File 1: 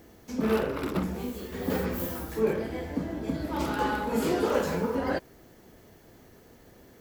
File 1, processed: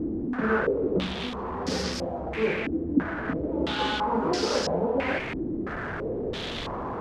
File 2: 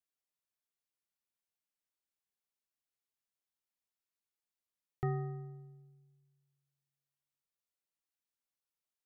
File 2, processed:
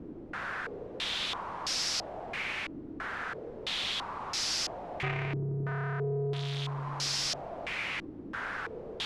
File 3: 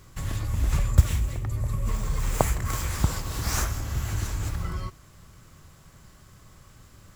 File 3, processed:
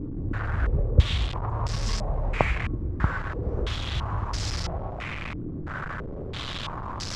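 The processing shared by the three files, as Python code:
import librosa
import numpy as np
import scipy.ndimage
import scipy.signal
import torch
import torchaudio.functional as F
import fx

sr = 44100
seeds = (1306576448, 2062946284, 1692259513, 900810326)

y = fx.delta_mod(x, sr, bps=64000, step_db=-27.0)
y = fx.filter_held_lowpass(y, sr, hz=3.0, low_hz=310.0, high_hz=5200.0)
y = y * 10.0 ** (-1.0 / 20.0)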